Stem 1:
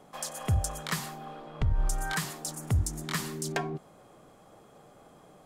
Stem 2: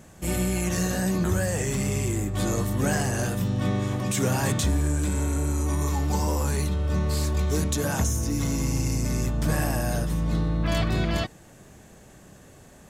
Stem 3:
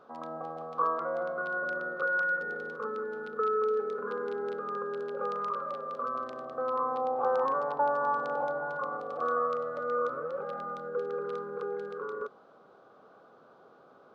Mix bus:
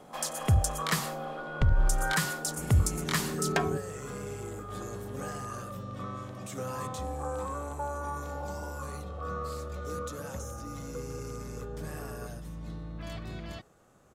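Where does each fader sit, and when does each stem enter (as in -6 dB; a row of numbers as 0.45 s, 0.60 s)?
+3.0 dB, -15.5 dB, -8.5 dB; 0.00 s, 2.35 s, 0.00 s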